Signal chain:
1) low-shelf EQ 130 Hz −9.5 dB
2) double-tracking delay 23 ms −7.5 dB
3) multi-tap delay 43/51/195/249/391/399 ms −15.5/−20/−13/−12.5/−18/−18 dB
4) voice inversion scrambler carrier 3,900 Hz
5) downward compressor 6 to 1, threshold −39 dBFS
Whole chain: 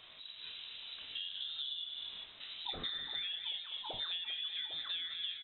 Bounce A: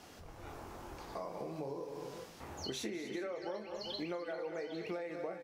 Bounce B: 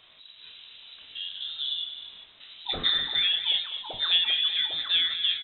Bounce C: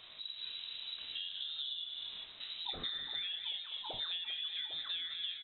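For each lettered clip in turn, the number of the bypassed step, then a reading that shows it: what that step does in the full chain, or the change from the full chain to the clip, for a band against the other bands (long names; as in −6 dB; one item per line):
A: 4, 4 kHz band −25.0 dB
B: 5, average gain reduction 7.5 dB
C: 1, change in momentary loudness spread −3 LU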